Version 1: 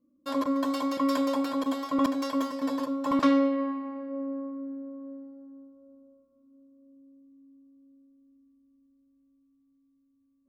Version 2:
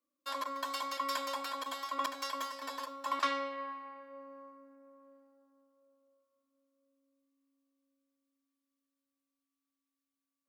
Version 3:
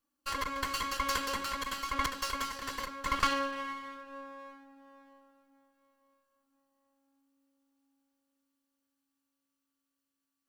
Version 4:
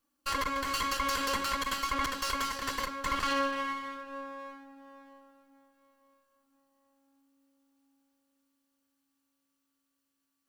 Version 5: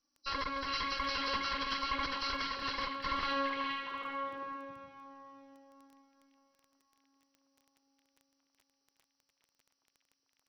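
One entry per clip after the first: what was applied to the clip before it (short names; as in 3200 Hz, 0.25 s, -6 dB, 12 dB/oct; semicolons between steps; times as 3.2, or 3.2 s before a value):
HPF 1100 Hz 12 dB/oct
minimum comb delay 0.68 ms; gain +5 dB
limiter -26 dBFS, peak gain reduction 10.5 dB; gain +4.5 dB
nonlinear frequency compression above 3900 Hz 4:1; crackle 11/s -44 dBFS; delay with a stepping band-pass 0.411 s, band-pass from 2500 Hz, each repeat -1.4 oct, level 0 dB; gain -5 dB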